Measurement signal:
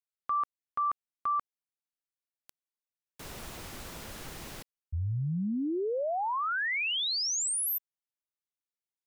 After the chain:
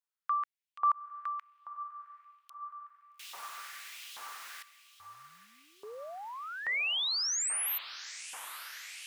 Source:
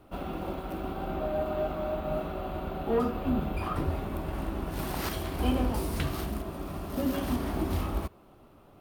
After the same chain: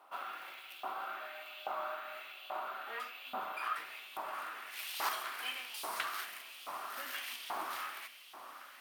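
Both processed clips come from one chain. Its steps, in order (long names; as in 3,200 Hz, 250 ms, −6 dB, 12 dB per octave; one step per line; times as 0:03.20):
feedback delay with all-pass diffusion 846 ms, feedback 73%, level −14.5 dB
auto-filter high-pass saw up 1.2 Hz 890–3,200 Hz
level −2.5 dB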